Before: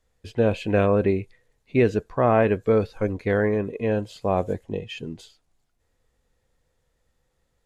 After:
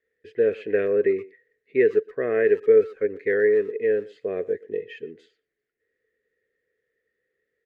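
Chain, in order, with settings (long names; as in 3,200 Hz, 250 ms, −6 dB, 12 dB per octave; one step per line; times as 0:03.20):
pair of resonant band-passes 890 Hz, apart 2.1 octaves
far-end echo of a speakerphone 120 ms, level −20 dB
level +7 dB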